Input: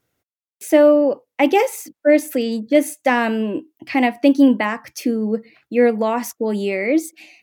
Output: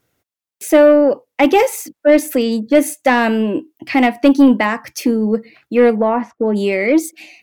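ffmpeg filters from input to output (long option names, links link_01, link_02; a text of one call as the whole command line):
ffmpeg -i in.wav -filter_complex "[0:a]acontrast=53,asplit=3[link_01][link_02][link_03];[link_01]afade=type=out:start_time=5.95:duration=0.02[link_04];[link_02]lowpass=1500,afade=type=in:start_time=5.95:duration=0.02,afade=type=out:start_time=6.55:duration=0.02[link_05];[link_03]afade=type=in:start_time=6.55:duration=0.02[link_06];[link_04][link_05][link_06]amix=inputs=3:normalize=0,volume=-1dB" out.wav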